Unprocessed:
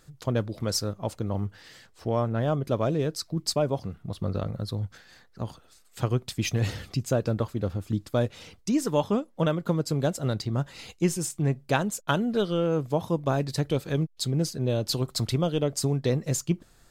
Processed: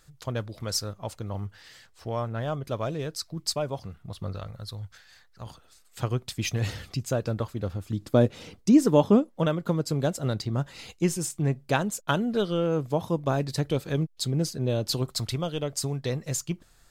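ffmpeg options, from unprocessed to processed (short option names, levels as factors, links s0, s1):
-af "asetnsamples=n=441:p=0,asendcmd='4.35 equalizer g -14.5;5.46 equalizer g -3.5;8.02 equalizer g 7.5;9.29 equalizer g -0.5;15.12 equalizer g -6.5',equalizer=f=270:t=o:w=2.5:g=-7.5"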